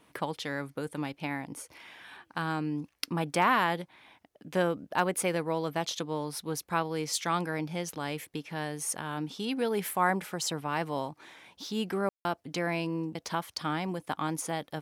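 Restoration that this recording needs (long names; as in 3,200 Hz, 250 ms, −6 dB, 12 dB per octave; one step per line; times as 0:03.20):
clipped peaks rebuilt −12.5 dBFS
ambience match 0:12.09–0:12.25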